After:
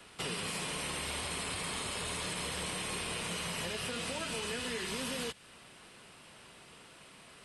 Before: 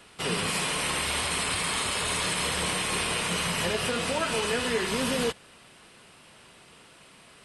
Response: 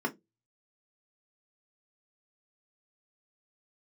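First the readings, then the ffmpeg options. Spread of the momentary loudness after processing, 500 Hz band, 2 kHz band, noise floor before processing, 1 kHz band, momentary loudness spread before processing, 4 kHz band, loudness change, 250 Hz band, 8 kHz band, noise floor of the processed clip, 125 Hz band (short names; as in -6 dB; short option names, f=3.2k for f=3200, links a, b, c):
18 LU, -10.5 dB, -9.5 dB, -54 dBFS, -10.5 dB, 1 LU, -8.5 dB, -9.0 dB, -9.0 dB, -8.5 dB, -56 dBFS, -8.0 dB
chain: -filter_complex "[0:a]acrossover=split=310|810|2100[a][b][c][d];[a]acompressor=threshold=-42dB:ratio=4[e];[b]acompressor=threshold=-44dB:ratio=4[f];[c]acompressor=threshold=-46dB:ratio=4[g];[d]acompressor=threshold=-37dB:ratio=4[h];[e][f][g][h]amix=inputs=4:normalize=0,volume=-2dB"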